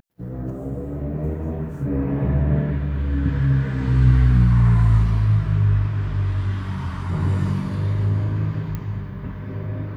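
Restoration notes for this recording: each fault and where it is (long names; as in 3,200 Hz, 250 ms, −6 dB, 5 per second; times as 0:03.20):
0:08.75: click −16 dBFS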